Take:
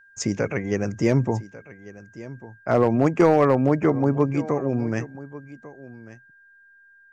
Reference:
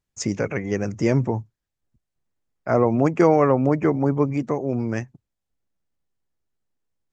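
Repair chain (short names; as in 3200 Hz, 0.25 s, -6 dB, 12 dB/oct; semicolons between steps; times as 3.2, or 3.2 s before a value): clip repair -9 dBFS; notch 1600 Hz, Q 30; inverse comb 1.145 s -18 dB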